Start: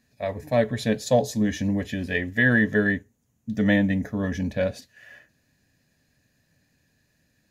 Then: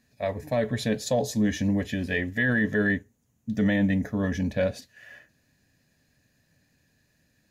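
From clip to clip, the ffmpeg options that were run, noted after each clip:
ffmpeg -i in.wav -af "alimiter=limit=-15.5dB:level=0:latency=1:release=11" out.wav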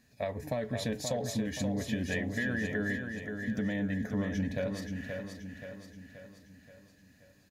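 ffmpeg -i in.wav -filter_complex "[0:a]acompressor=threshold=-32dB:ratio=6,asplit=2[link_01][link_02];[link_02]aecho=0:1:528|1056|1584|2112|2640|3168:0.501|0.256|0.13|0.0665|0.0339|0.0173[link_03];[link_01][link_03]amix=inputs=2:normalize=0,volume=1dB" out.wav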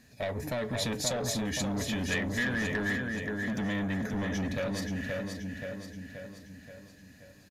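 ffmpeg -i in.wav -filter_complex "[0:a]acrossover=split=2000[link_01][link_02];[link_01]asoftclip=type=tanh:threshold=-36.5dB[link_03];[link_03][link_02]amix=inputs=2:normalize=0,aresample=32000,aresample=44100,volume=7dB" out.wav

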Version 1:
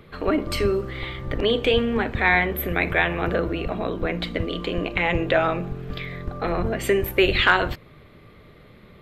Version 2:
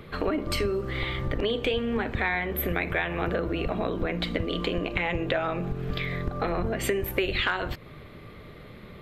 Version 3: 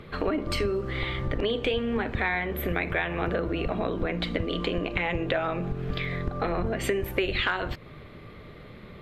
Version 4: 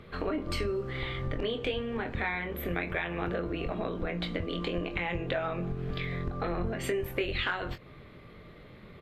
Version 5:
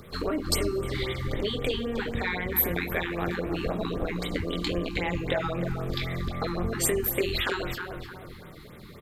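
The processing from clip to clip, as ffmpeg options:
ffmpeg -i in.wav -af "acompressor=threshold=-28dB:ratio=5,volume=3.5dB" out.wav
ffmpeg -i in.wav -af "highshelf=frequency=11000:gain=-11.5" out.wav
ffmpeg -i in.wav -filter_complex "[0:a]asplit=2[link_01][link_02];[link_02]adelay=23,volume=-7.5dB[link_03];[link_01][link_03]amix=inputs=2:normalize=0,volume=-5.5dB" out.wav
ffmpeg -i in.wav -filter_complex "[0:a]asplit=2[link_01][link_02];[link_02]adelay=310,lowpass=frequency=2100:poles=1,volume=-6dB,asplit=2[link_03][link_04];[link_04]adelay=310,lowpass=frequency=2100:poles=1,volume=0.42,asplit=2[link_05][link_06];[link_06]adelay=310,lowpass=frequency=2100:poles=1,volume=0.42,asplit=2[link_07][link_08];[link_08]adelay=310,lowpass=frequency=2100:poles=1,volume=0.42,asplit=2[link_09][link_10];[link_10]adelay=310,lowpass=frequency=2100:poles=1,volume=0.42[link_11];[link_03][link_05][link_07][link_09][link_11]amix=inputs=5:normalize=0[link_12];[link_01][link_12]amix=inputs=2:normalize=0,aexciter=amount=5:drive=4.6:freq=4000,afftfilt=real='re*(1-between(b*sr/1024,530*pow(5700/530,0.5+0.5*sin(2*PI*3.8*pts/sr))/1.41,530*pow(5700/530,0.5+0.5*sin(2*PI*3.8*pts/sr))*1.41))':imag='im*(1-between(b*sr/1024,530*pow(5700/530,0.5+0.5*sin(2*PI*3.8*pts/sr))/1.41,530*pow(5700/530,0.5+0.5*sin(2*PI*3.8*pts/sr))*1.41))':win_size=1024:overlap=0.75,volume=3dB" out.wav

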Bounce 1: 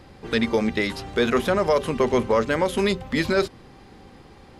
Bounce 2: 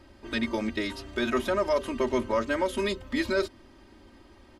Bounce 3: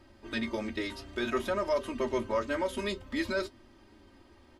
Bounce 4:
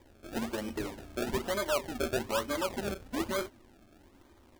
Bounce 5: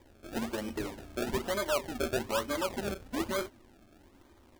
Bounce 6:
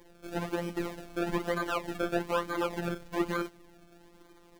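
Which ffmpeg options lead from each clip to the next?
ffmpeg -i in.wav -af "aecho=1:1:3.2:0.93,volume=-8.5dB" out.wav
ffmpeg -i in.wav -af "flanger=delay=8.2:depth=4.1:regen=-51:speed=0.56:shape=triangular" out.wav
ffmpeg -i in.wav -af "acrusher=samples=31:mix=1:aa=0.000001:lfo=1:lforange=31:lforate=1.1,volume=-1.5dB" out.wav
ffmpeg -i in.wav -af anull out.wav
ffmpeg -i in.wav -filter_complex "[0:a]acrossover=split=2800[link_01][link_02];[link_02]acompressor=threshold=-47dB:ratio=4:attack=1:release=60[link_03];[link_01][link_03]amix=inputs=2:normalize=0,afftfilt=real='hypot(re,im)*cos(PI*b)':imag='0':win_size=1024:overlap=0.75,volume=6dB" out.wav

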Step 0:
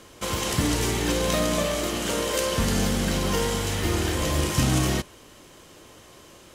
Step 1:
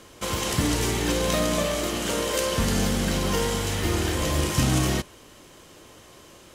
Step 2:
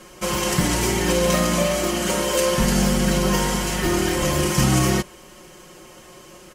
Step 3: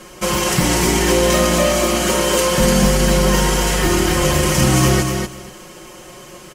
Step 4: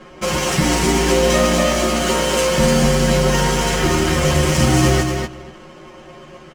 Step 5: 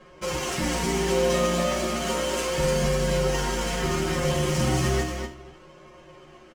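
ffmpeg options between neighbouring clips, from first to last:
ffmpeg -i in.wav -af anull out.wav
ffmpeg -i in.wav -af "equalizer=frequency=3700:width=4.1:gain=-6.5,aecho=1:1:5.5:0.98,volume=2dB" out.wav
ffmpeg -i in.wav -filter_complex "[0:a]asplit=2[link_01][link_02];[link_02]alimiter=limit=-14dB:level=0:latency=1,volume=-1.5dB[link_03];[link_01][link_03]amix=inputs=2:normalize=0,aecho=1:1:243|486|729:0.562|0.0956|0.0163" out.wav
ffmpeg -i in.wav -filter_complex "[0:a]adynamicsmooth=sensitivity=5.5:basefreq=2400,asplit=2[link_01][link_02];[link_02]adelay=13,volume=-4dB[link_03];[link_01][link_03]amix=inputs=2:normalize=0,volume=-1.5dB" out.wav
ffmpeg -i in.wav -af "flanger=delay=1.8:depth=4:regen=-42:speed=0.34:shape=sinusoidal,aecho=1:1:46|79:0.282|0.178,volume=-6dB" out.wav

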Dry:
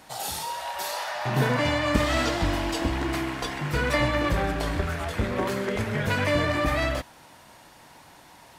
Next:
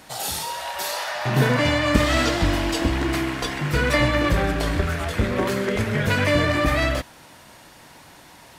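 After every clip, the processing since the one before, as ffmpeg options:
ffmpeg -i in.wav -af "equalizer=frequency=860:width=1.8:gain=-4,volume=5dB" out.wav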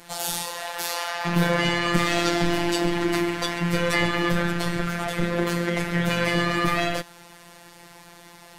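ffmpeg -i in.wav -af "asoftclip=type=tanh:threshold=-11dB,tremolo=f=120:d=0.519,afftfilt=real='hypot(re,im)*cos(PI*b)':imag='0':win_size=1024:overlap=0.75,volume=5.5dB" out.wav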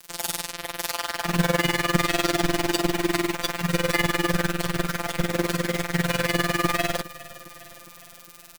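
ffmpeg -i in.wav -af "acrusher=bits=4:mix=0:aa=0.000001,tremolo=f=20:d=0.857,aecho=1:1:408|816|1224|1632|2040:0.112|0.0673|0.0404|0.0242|0.0145,volume=2.5dB" out.wav

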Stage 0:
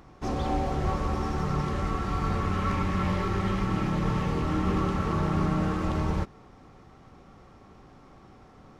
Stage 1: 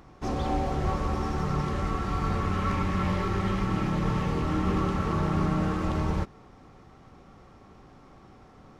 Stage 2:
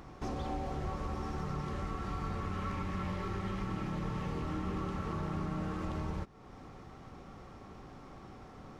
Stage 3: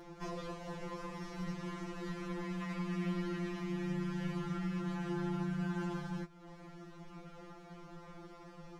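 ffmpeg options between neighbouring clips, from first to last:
ffmpeg -i in.wav -af anull out.wav
ffmpeg -i in.wav -af "acompressor=threshold=-41dB:ratio=2.5,volume=1.5dB" out.wav
ffmpeg -i in.wav -af "afftfilt=real='re*2.83*eq(mod(b,8),0)':imag='im*2.83*eq(mod(b,8),0)':win_size=2048:overlap=0.75,volume=2dB" out.wav

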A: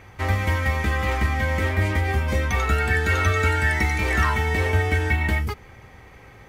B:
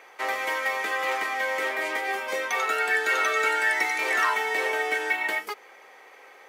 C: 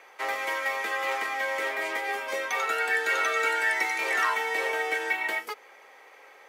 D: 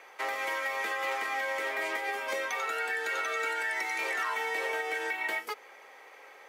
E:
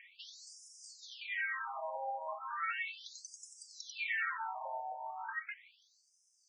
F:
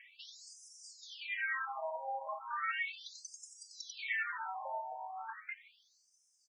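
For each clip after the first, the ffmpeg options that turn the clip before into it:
ffmpeg -i in.wav -af "highpass=frequency=430:width=0.5412,highpass=frequency=430:width=1.3066" out.wav
ffmpeg -i in.wav -af "afreqshift=15,volume=-2dB" out.wav
ffmpeg -i in.wav -af "alimiter=limit=-23dB:level=0:latency=1:release=185" out.wav
ffmpeg -i in.wav -af "afftfilt=real='re*between(b*sr/1024,700*pow(7100/700,0.5+0.5*sin(2*PI*0.36*pts/sr))/1.41,700*pow(7100/700,0.5+0.5*sin(2*PI*0.36*pts/sr))*1.41)':imag='im*between(b*sr/1024,700*pow(7100/700,0.5+0.5*sin(2*PI*0.36*pts/sr))/1.41,700*pow(7100/700,0.5+0.5*sin(2*PI*0.36*pts/sr))*1.41)':win_size=1024:overlap=0.75,volume=-1.5dB" out.wav
ffmpeg -i in.wav -filter_complex "[0:a]asplit=2[link_01][link_02];[link_02]adelay=3.1,afreqshift=1.7[link_03];[link_01][link_03]amix=inputs=2:normalize=1,volume=3dB" out.wav

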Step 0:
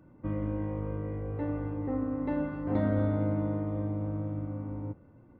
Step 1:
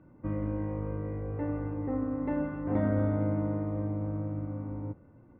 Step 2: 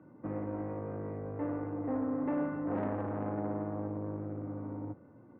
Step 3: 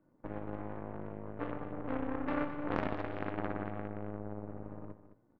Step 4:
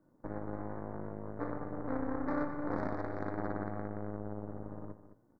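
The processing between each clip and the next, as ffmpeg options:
ffmpeg -i in.wav -af "lowpass=frequency=2700:width=0.5412,lowpass=frequency=2700:width=1.3066" out.wav
ffmpeg -i in.wav -filter_complex "[0:a]equalizer=frequency=100:width_type=o:width=0.92:gain=7.5,asoftclip=type=tanh:threshold=-28.5dB,acrossover=split=170 2300:gain=0.0891 1 0.141[link_01][link_02][link_03];[link_01][link_02][link_03]amix=inputs=3:normalize=0,volume=2.5dB" out.wav
ffmpeg -i in.wav -af "aeval=exprs='0.0841*(cos(1*acos(clip(val(0)/0.0841,-1,1)))-cos(1*PI/2))+0.0266*(cos(3*acos(clip(val(0)/0.0841,-1,1)))-cos(3*PI/2))+0.00075*(cos(5*acos(clip(val(0)/0.0841,-1,1)))-cos(5*PI/2))+0.00335*(cos(8*acos(clip(val(0)/0.0841,-1,1)))-cos(8*PI/2))':channel_layout=same,aecho=1:1:212:0.251,volume=6dB" out.wav
ffmpeg -i in.wav -af "asoftclip=type=tanh:threshold=-22.5dB,asuperstop=centerf=2900:order=4:qfactor=1.1,volume=1.5dB" out.wav

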